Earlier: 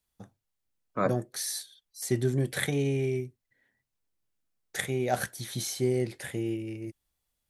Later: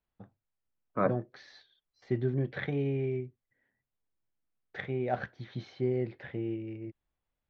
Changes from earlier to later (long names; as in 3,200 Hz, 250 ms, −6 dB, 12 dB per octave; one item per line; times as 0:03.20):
first voice −3.0 dB
master: add Gaussian smoothing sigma 3 samples